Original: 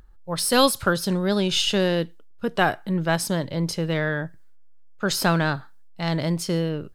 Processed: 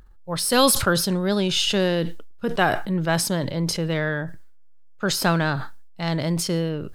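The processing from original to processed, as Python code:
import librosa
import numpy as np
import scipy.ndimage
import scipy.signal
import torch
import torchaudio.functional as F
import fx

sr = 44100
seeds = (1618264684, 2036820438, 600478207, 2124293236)

y = fx.sustainer(x, sr, db_per_s=53.0)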